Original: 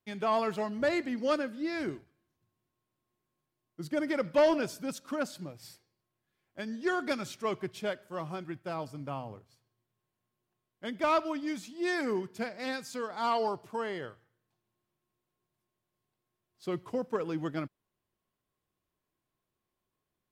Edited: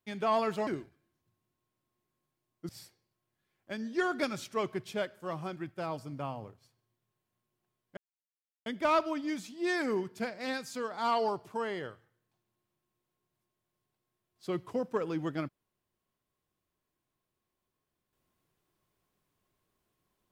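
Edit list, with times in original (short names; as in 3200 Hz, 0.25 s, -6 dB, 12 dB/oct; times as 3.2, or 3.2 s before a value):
0.67–1.82 cut
3.84–5.57 cut
10.85 insert silence 0.69 s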